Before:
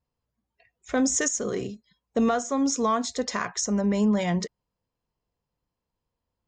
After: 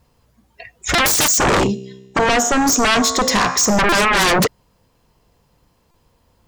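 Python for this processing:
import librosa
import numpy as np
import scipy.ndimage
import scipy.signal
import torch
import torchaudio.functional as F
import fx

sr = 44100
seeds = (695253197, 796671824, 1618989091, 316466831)

y = fx.comb_fb(x, sr, f0_hz=65.0, decay_s=1.2, harmonics='all', damping=0.0, mix_pct=60, at=(1.64, 3.79))
y = fx.fold_sine(y, sr, drive_db=19, ceiling_db=-13.0)
y = fx.buffer_glitch(y, sr, at_s=(0.95, 3.89, 5.91), block=128, repeats=10)
y = y * 10.0 ** (1.5 / 20.0)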